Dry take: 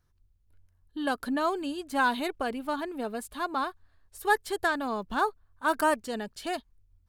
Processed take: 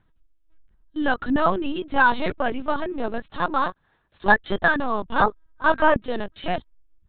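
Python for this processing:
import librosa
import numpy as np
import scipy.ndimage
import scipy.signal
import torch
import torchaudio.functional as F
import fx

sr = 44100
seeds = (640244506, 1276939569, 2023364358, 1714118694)

y = fx.highpass(x, sr, hz=110.0, slope=24, at=(3.3, 4.34))
y = fx.lpc_vocoder(y, sr, seeds[0], excitation='pitch_kept', order=10)
y = y * librosa.db_to_amplitude(8.0)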